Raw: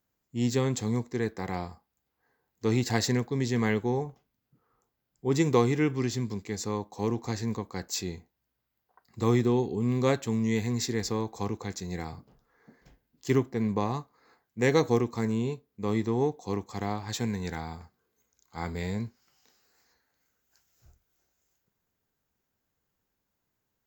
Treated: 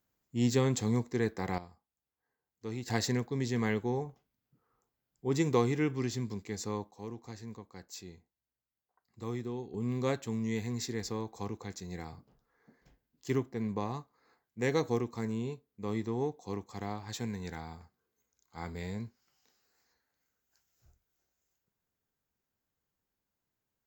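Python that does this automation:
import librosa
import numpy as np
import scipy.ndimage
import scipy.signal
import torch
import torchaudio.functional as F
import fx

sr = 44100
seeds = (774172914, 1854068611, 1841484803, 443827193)

y = fx.gain(x, sr, db=fx.steps((0.0, -1.0), (1.58, -13.0), (2.88, -4.5), (6.91, -13.5), (9.74, -6.5)))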